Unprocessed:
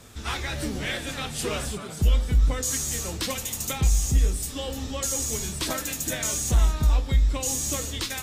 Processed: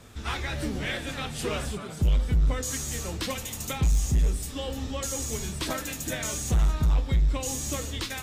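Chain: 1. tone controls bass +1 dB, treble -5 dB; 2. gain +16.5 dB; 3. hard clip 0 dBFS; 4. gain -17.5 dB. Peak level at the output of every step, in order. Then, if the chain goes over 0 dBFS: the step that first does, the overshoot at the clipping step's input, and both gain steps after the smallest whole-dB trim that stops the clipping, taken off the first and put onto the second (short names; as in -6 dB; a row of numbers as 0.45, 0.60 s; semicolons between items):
-11.0, +5.5, 0.0, -17.5 dBFS; step 2, 5.5 dB; step 2 +10.5 dB, step 4 -11.5 dB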